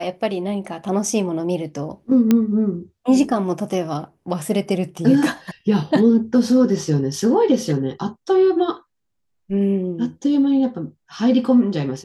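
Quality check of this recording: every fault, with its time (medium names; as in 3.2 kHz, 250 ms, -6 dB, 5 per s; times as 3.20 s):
2.31 s: pop -4 dBFS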